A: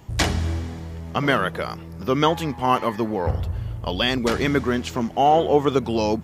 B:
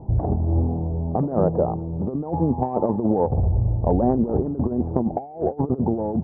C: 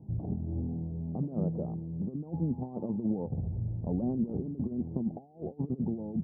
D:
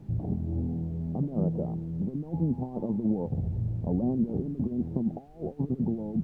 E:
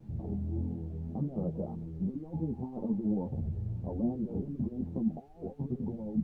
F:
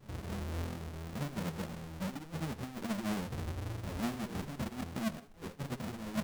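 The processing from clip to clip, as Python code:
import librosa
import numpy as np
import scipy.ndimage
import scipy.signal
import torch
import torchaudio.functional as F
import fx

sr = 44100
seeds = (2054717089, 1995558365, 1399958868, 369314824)

y1 = scipy.signal.sosfilt(scipy.signal.ellip(4, 1.0, 70, 820.0, 'lowpass', fs=sr, output='sos'), x)
y1 = fx.over_compress(y1, sr, threshold_db=-26.0, ratio=-0.5)
y1 = y1 * 10.0 ** (5.5 / 20.0)
y2 = fx.bandpass_q(y1, sr, hz=180.0, q=1.5)
y2 = y2 * 10.0 ** (-6.5 / 20.0)
y3 = fx.dmg_noise_colour(y2, sr, seeds[0], colour='brown', level_db=-59.0)
y3 = y3 * 10.0 ** (3.5 / 20.0)
y4 = fx.vibrato(y3, sr, rate_hz=1.9, depth_cents=44.0)
y4 = fx.ensemble(y4, sr)
y4 = y4 * 10.0 ** (-1.5 / 20.0)
y5 = fx.halfwave_hold(y4, sr)
y5 = fx.echo_feedback(y5, sr, ms=79, feedback_pct=35, wet_db=-18.0)
y5 = y5 * 10.0 ** (-8.0 / 20.0)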